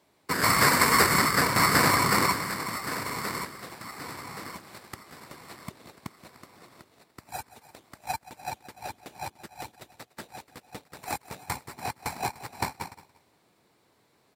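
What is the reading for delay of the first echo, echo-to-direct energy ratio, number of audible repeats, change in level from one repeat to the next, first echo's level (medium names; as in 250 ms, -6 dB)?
175 ms, -16.5 dB, 2, -11.5 dB, -17.0 dB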